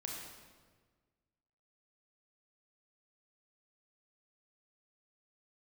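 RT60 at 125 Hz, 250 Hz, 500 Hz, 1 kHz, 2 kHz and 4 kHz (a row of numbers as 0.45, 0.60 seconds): 1.9, 1.7, 1.6, 1.4, 1.2, 1.1 seconds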